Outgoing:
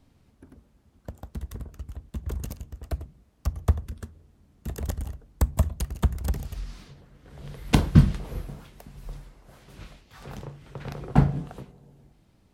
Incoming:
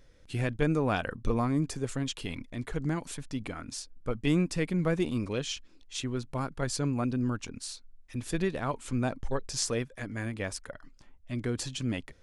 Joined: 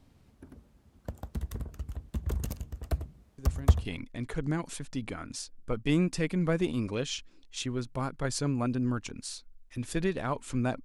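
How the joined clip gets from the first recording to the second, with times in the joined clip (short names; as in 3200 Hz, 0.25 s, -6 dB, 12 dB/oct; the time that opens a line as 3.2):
outgoing
3.38 add incoming from 1.76 s 0.47 s -10.5 dB
3.85 switch to incoming from 2.23 s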